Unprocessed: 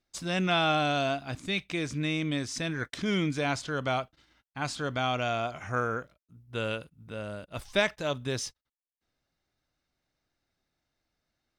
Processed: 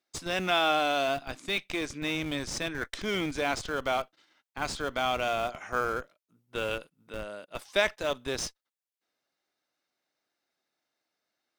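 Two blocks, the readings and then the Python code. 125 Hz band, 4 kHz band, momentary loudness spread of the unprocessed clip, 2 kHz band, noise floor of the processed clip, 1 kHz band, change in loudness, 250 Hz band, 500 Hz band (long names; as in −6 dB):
−9.0 dB, +0.5 dB, 12 LU, +0.5 dB, below −85 dBFS, +1.0 dB, 0.0 dB, −4.0 dB, +1.0 dB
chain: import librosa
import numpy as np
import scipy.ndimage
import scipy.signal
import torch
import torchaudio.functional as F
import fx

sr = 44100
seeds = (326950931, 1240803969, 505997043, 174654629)

p1 = scipy.signal.sosfilt(scipy.signal.butter(2, 340.0, 'highpass', fs=sr, output='sos'), x)
p2 = fx.schmitt(p1, sr, flips_db=-32.0)
y = p1 + (p2 * librosa.db_to_amplitude(-7.0))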